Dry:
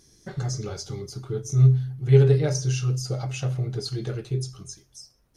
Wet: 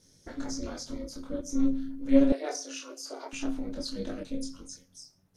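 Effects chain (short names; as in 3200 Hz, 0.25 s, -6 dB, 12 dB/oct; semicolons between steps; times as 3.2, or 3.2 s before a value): chorus voices 6, 0.67 Hz, delay 25 ms, depth 4.4 ms; in parallel at -12 dB: soft clip -23.5 dBFS, distortion -7 dB; on the sum: ring modulator 140 Hz; 2.32–3.33 elliptic high-pass 360 Hz, stop band 60 dB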